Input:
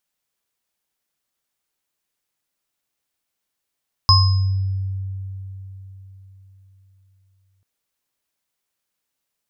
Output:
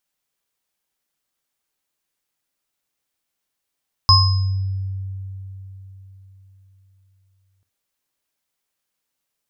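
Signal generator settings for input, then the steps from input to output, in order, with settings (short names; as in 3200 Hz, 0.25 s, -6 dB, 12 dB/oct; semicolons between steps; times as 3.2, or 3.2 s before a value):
sine partials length 3.54 s, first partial 96.1 Hz, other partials 1070/5080 Hz, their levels -2/1 dB, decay 4.18 s, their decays 0.54/0.72 s, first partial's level -11 dB
non-linear reverb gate 0.1 s falling, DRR 11.5 dB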